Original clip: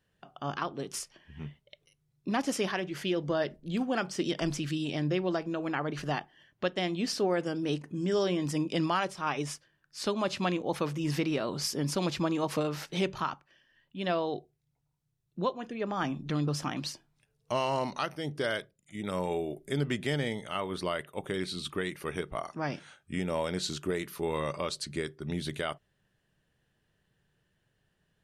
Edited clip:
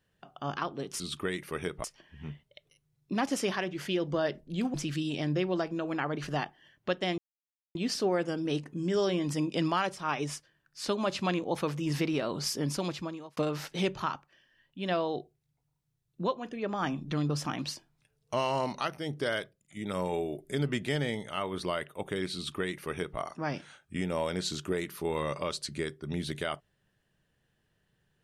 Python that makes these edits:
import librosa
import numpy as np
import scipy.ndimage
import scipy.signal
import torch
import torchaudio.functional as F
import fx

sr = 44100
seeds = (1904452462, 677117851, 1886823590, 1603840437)

y = fx.edit(x, sr, fx.cut(start_s=3.9, length_s=0.59),
    fx.insert_silence(at_s=6.93, length_s=0.57),
    fx.fade_out_span(start_s=11.81, length_s=0.74),
    fx.duplicate(start_s=21.53, length_s=0.84, to_s=1.0), tone=tone)